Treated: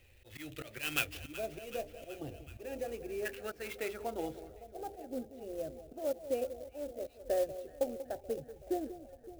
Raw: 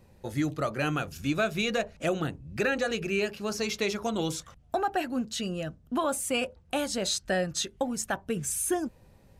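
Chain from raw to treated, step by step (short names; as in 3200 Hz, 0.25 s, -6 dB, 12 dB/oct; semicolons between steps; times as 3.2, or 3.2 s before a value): passive tone stack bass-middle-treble 5-5-5; fixed phaser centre 440 Hz, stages 4; auto swell 0.176 s; spectral gain 1.2–3.26, 1200–5700 Hz -24 dB; echo with dull and thin repeats by turns 0.188 s, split 910 Hz, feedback 81%, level -13 dB; low-pass sweep 2800 Hz -> 600 Hz, 2.54–4.91; clock jitter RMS 0.034 ms; gain +12 dB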